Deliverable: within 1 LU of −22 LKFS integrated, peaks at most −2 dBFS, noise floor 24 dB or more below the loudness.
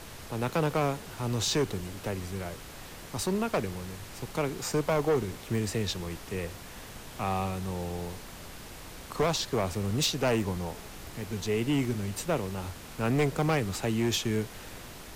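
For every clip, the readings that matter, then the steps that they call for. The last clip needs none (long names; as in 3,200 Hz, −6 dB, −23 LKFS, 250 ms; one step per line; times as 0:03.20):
share of clipped samples 1.3%; peaks flattened at −21.0 dBFS; background noise floor −45 dBFS; target noise floor −55 dBFS; integrated loudness −31.0 LKFS; sample peak −21.0 dBFS; target loudness −22.0 LKFS
→ clipped peaks rebuilt −21 dBFS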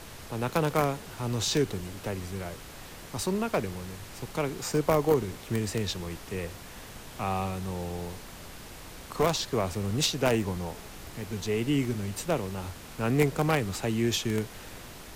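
share of clipped samples 0.0%; background noise floor −45 dBFS; target noise floor −54 dBFS
→ noise reduction from a noise print 9 dB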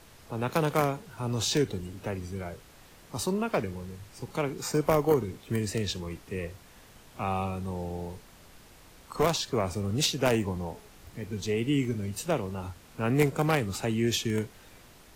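background noise floor −54 dBFS; integrated loudness −30.0 LKFS; sample peak −12.0 dBFS; target loudness −22.0 LKFS
→ level +8 dB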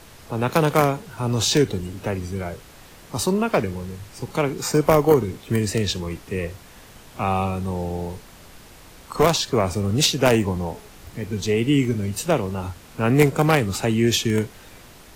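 integrated loudness −22.0 LKFS; sample peak −4.0 dBFS; background noise floor −46 dBFS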